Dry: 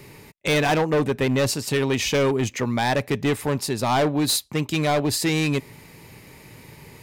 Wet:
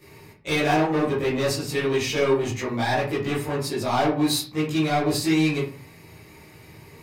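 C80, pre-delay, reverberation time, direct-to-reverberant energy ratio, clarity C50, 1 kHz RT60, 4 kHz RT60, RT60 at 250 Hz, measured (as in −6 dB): 10.5 dB, 13 ms, 0.45 s, −11.5 dB, 5.0 dB, 0.45 s, 0.25 s, 0.55 s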